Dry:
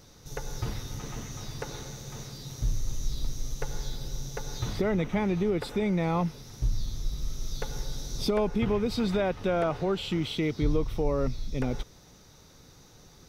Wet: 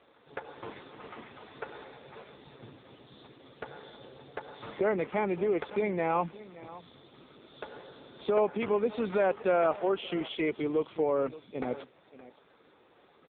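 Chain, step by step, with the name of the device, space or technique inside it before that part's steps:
0:09.78–0:10.19: high-pass filter 220 Hz → 94 Hz 12 dB per octave
satellite phone (band-pass filter 380–3,200 Hz; single-tap delay 570 ms −18 dB; level +3.5 dB; AMR narrowband 5.9 kbit/s 8,000 Hz)

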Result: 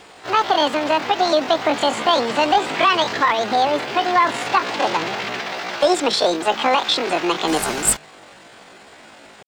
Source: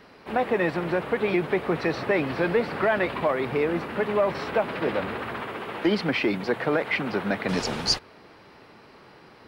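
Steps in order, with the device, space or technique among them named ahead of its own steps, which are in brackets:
chipmunk voice (pitch shifter +9.5 semitones)
level +7 dB

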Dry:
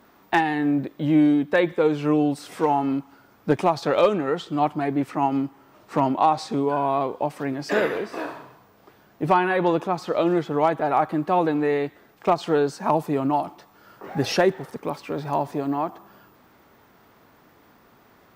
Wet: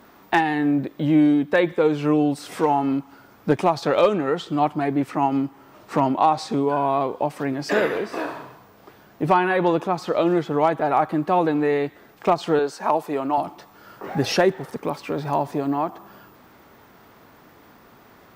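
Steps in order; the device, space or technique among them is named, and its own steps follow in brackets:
0:12.59–0:13.38: bass and treble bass −15 dB, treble −2 dB
parallel compression (in parallel at −2.5 dB: downward compressor, threshold −32 dBFS, peak gain reduction 17.5 dB)

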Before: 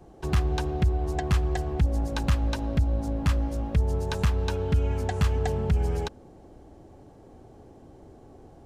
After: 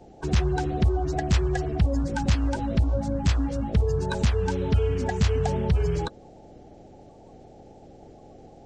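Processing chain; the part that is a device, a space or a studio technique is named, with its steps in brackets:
clip after many re-uploads (low-pass filter 7,900 Hz 24 dB per octave; spectral magnitudes quantised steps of 30 dB)
level +2 dB

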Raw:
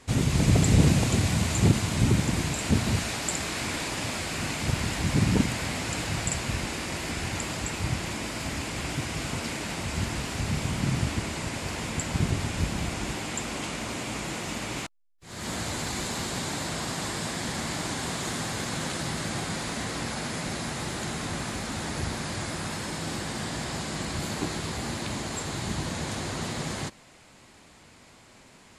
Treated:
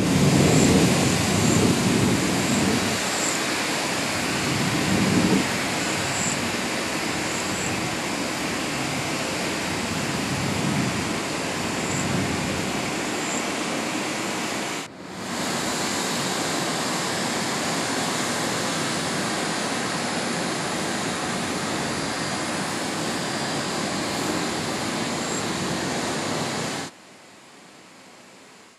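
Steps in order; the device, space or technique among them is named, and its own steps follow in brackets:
high-pass filter 210 Hz 12 dB per octave
reverse reverb (reversed playback; convolution reverb RT60 2.0 s, pre-delay 16 ms, DRR −7 dB; reversed playback)

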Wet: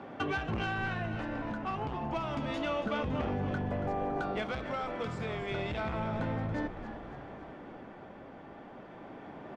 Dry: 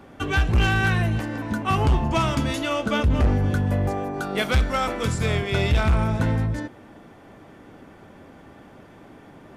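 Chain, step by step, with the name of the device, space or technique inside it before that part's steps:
AM radio (band-pass filter 130–3,500 Hz; downward compressor, threshold −30 dBFS, peak gain reduction 11.5 dB; soft clipping −24 dBFS, distortion −21 dB; amplitude tremolo 0.3 Hz, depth 37%)
parametric band 740 Hz +4.5 dB 1.1 octaves
echo with shifted repeats 280 ms, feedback 54%, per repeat −77 Hz, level −11 dB

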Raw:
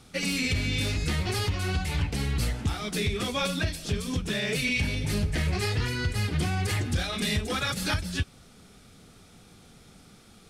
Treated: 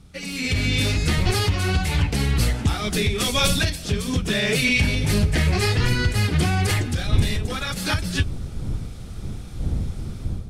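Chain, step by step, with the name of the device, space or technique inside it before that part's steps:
0:03.18–0:03.70: high-shelf EQ 3,400 Hz +10.5 dB
smartphone video outdoors (wind on the microphone 98 Hz −32 dBFS; automatic gain control gain up to 13 dB; level −5 dB; AAC 96 kbit/s 44,100 Hz)

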